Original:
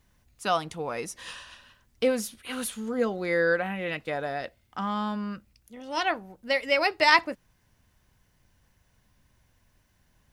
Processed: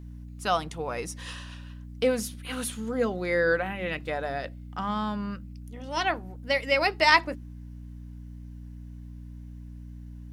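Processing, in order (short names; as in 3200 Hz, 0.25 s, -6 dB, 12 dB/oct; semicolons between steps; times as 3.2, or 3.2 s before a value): wow and flutter 28 cents; hum 60 Hz, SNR 11 dB; de-hum 48.82 Hz, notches 7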